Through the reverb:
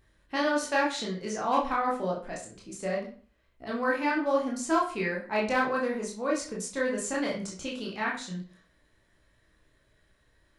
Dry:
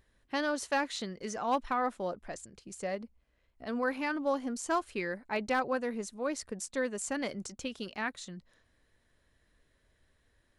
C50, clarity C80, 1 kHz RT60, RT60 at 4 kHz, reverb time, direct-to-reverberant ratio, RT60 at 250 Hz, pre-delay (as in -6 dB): 6.5 dB, 12.0 dB, 0.40 s, 0.35 s, 0.40 s, -3.5 dB, 0.45 s, 16 ms